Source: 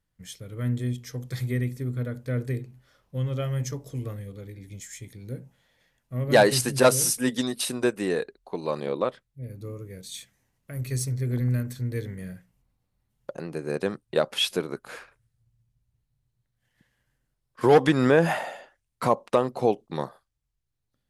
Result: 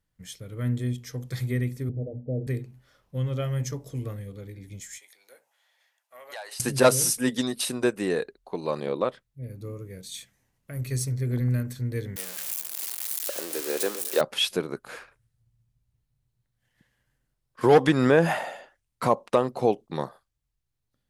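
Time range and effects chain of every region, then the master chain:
1.89–2.47 s: steep low-pass 820 Hz 96 dB/octave + hum notches 60/120/180/240/300 Hz
4.98–6.60 s: Chebyshev high-pass 730 Hz, order 3 + compression 3:1, threshold -42 dBFS
12.16–14.21 s: zero-crossing glitches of -19.5 dBFS + high-pass 290 Hz 24 dB/octave + echo whose repeats swap between lows and highs 122 ms, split 1 kHz, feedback 63%, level -12.5 dB
whole clip: none

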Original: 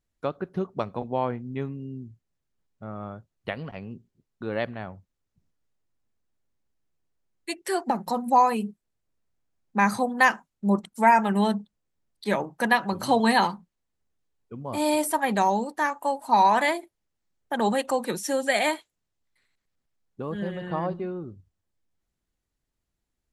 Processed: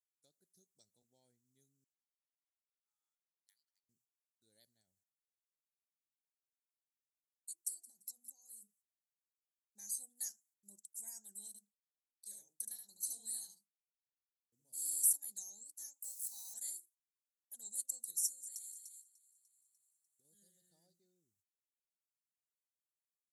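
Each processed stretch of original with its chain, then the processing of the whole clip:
1.84–3.89 s: median filter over 3 samples + Chebyshev high-pass 840 Hz, order 10 + treble shelf 3.4 kHz -10 dB
4.80–8.62 s: compression 5:1, threshold -31 dBFS + feedback delay 171 ms, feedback 28%, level -19 dB
11.47–15.13 s: expander -42 dBFS + compression 1.5:1, threshold -24 dBFS + delay 73 ms -5.5 dB
16.04–16.54 s: jump at every zero crossing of -35.5 dBFS + bass shelf 460 Hz -10 dB
18.26–20.25 s: compression 4:1, threshold -34 dBFS + feedback echo behind a high-pass 297 ms, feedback 44%, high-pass 1.9 kHz, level -6 dB + tape noise reduction on one side only encoder only
whole clip: gate -48 dBFS, range -11 dB; inverse Chebyshev high-pass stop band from 2.9 kHz, stop band 50 dB; trim +3 dB

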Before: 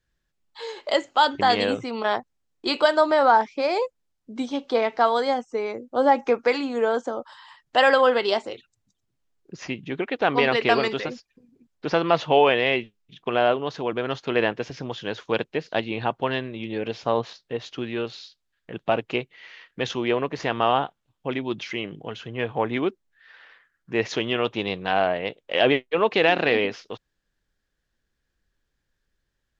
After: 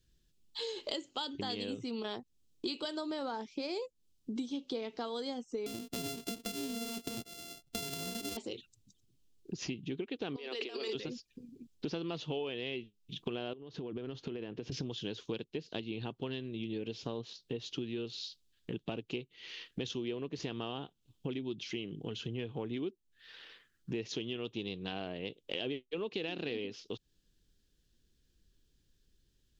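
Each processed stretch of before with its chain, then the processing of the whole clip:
5.66–8.37 s: sorted samples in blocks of 64 samples + band-stop 1.1 kHz, Q 18 + compression 4:1, threshold -27 dBFS
10.36–10.95 s: compressor with a negative ratio -30 dBFS + high-pass 340 Hz 24 dB/octave
13.53–14.72 s: low-pass 1.8 kHz 6 dB/octave + compression 5:1, threshold -37 dBFS
whole clip: high-order bell 1.1 kHz -13.5 dB 2.3 oct; compression 6:1, threshold -42 dBFS; trim +5.5 dB

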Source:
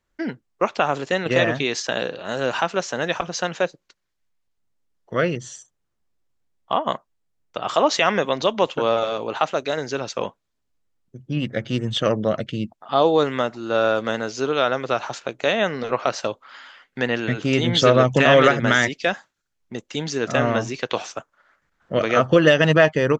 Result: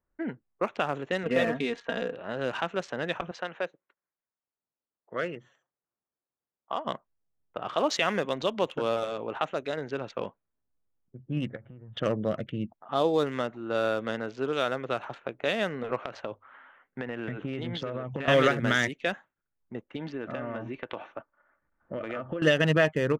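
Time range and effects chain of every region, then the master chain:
1.23–2.14 s: low-pass 2.2 kHz 6 dB/octave + comb 4.3 ms, depth 72%
3.31–6.85 s: high-pass 520 Hz 6 dB/octave + treble shelf 5 kHz -4 dB
11.56–11.97 s: low-pass 1.2 kHz + peaking EQ 290 Hz -11.5 dB 1.9 oct + compression 12:1, threshold -36 dBFS
16.00–18.28 s: hum notches 50/100 Hz + compression 16:1, threshold -22 dBFS
19.96–22.42 s: comb 3.4 ms, depth 31% + compression 5:1, threshold -24 dBFS + low-pass 5.3 kHz 24 dB/octave
whole clip: local Wiener filter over 9 samples; level-controlled noise filter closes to 1.6 kHz, open at -15 dBFS; dynamic bell 870 Hz, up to -4 dB, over -29 dBFS, Q 1.1; trim -6 dB

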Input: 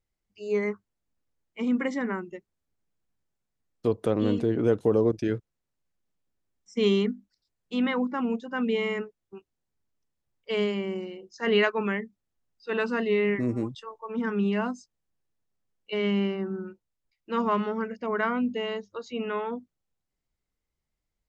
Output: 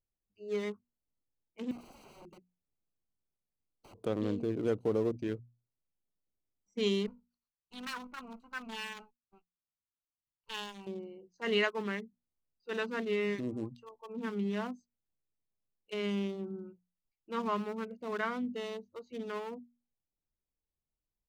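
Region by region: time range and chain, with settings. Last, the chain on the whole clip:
1.71–3.97 s: treble shelf 2.1 kHz +7 dB + compression 2:1, threshold -33 dBFS + integer overflow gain 36.5 dB
7.07–10.87 s: comb filter that takes the minimum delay 0.7 ms + resonant low shelf 800 Hz -10 dB, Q 1.5
whole clip: local Wiener filter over 25 samples; treble shelf 3.3 kHz +11 dB; hum notches 60/120/180/240 Hz; trim -8 dB

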